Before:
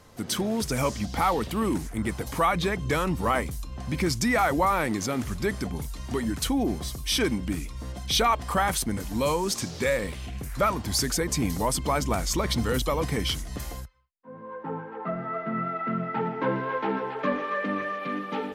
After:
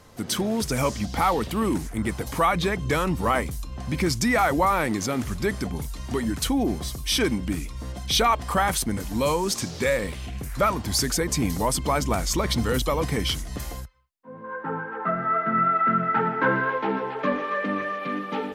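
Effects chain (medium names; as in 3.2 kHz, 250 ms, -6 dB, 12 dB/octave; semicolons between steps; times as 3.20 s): 14.44–16.70 s: peaking EQ 1.5 kHz +12 dB 0.6 oct; trim +2 dB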